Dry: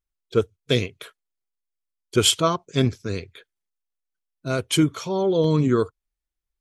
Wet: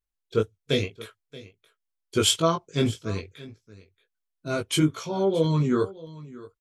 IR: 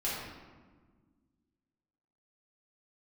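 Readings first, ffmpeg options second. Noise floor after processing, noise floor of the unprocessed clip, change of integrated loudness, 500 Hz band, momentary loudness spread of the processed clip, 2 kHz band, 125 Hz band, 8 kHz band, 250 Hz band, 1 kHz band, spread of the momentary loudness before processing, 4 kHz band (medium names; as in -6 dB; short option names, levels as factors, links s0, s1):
-83 dBFS, -85 dBFS, -3.0 dB, -3.0 dB, 20 LU, -3.0 dB, -2.5 dB, -3.0 dB, -3.0 dB, -2.5 dB, 12 LU, -3.0 dB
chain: -af "flanger=delay=18:depth=2.6:speed=2,aecho=1:1:628:0.112"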